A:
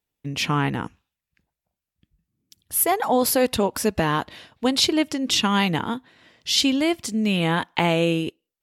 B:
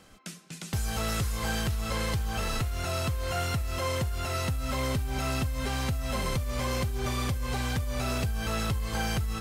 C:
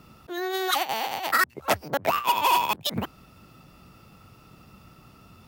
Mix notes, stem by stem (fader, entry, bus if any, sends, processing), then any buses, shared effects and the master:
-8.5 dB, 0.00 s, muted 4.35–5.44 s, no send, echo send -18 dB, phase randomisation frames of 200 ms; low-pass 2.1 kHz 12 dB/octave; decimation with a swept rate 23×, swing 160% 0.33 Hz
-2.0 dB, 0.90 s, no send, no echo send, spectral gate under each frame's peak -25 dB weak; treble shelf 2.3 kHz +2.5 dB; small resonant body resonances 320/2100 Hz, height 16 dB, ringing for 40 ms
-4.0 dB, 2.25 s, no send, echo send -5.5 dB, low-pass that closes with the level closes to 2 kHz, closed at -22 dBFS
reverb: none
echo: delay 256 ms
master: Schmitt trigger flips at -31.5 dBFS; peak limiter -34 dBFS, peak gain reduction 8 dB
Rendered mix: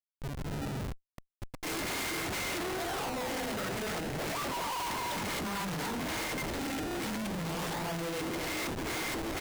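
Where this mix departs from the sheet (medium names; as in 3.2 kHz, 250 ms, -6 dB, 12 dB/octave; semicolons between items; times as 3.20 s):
stem A -8.5 dB -> -1.0 dB; stem B -2.0 dB -> +6.5 dB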